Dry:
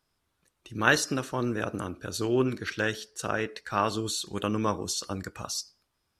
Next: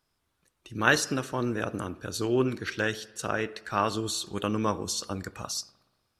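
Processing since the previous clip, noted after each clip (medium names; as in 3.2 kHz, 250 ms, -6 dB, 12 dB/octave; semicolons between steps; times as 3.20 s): reverberation RT60 1.4 s, pre-delay 60 ms, DRR 20 dB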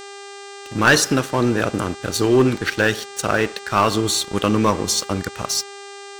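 waveshaping leveller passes 3; mains buzz 400 Hz, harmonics 22, -37 dBFS -4 dB/octave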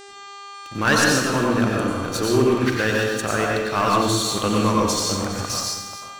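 chunks repeated in reverse 271 ms, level -12 dB; plate-style reverb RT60 0.97 s, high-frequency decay 0.75×, pre-delay 80 ms, DRR -2 dB; trim -5.5 dB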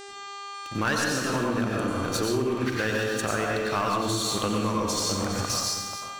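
compression, threshold -23 dBFS, peak gain reduction 10 dB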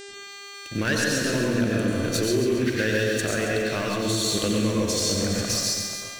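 high-order bell 1 kHz -11 dB 1 oct; bit-crushed delay 137 ms, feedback 55%, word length 9-bit, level -8 dB; trim +2.5 dB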